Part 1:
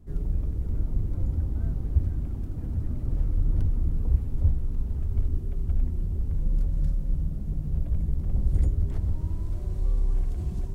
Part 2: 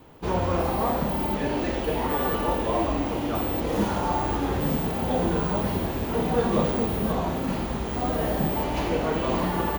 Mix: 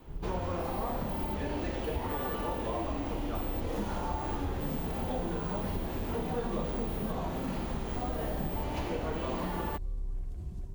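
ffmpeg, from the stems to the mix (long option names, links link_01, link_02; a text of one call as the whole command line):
ffmpeg -i stem1.wav -i stem2.wav -filter_complex "[0:a]volume=-10dB[link_01];[1:a]volume=-5dB[link_02];[link_01][link_02]amix=inputs=2:normalize=0,acompressor=threshold=-31dB:ratio=3" out.wav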